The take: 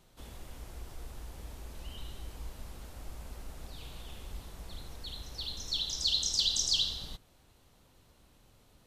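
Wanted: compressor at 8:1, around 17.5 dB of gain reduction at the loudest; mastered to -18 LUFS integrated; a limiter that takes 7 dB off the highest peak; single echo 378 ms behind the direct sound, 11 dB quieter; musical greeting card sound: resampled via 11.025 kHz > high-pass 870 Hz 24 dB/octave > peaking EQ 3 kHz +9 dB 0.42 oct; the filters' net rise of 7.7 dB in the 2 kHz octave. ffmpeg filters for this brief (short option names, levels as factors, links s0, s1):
-af "equalizer=f=2000:t=o:g=4.5,acompressor=threshold=0.00708:ratio=8,alimiter=level_in=5.62:limit=0.0631:level=0:latency=1,volume=0.178,aecho=1:1:378:0.282,aresample=11025,aresample=44100,highpass=f=870:w=0.5412,highpass=f=870:w=1.3066,equalizer=f=3000:t=o:w=0.42:g=9,volume=31.6"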